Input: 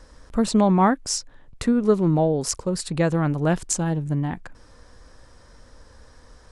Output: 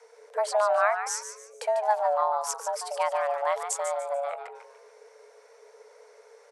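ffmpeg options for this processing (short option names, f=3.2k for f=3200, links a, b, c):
-filter_complex "[0:a]afreqshift=420,asplit=5[a][b][c][d][e];[b]adelay=146,afreqshift=120,volume=-9dB[f];[c]adelay=292,afreqshift=240,volume=-18.6dB[g];[d]adelay=438,afreqshift=360,volume=-28.3dB[h];[e]adelay=584,afreqshift=480,volume=-37.9dB[i];[a][f][g][h][i]amix=inputs=5:normalize=0,volume=-6.5dB"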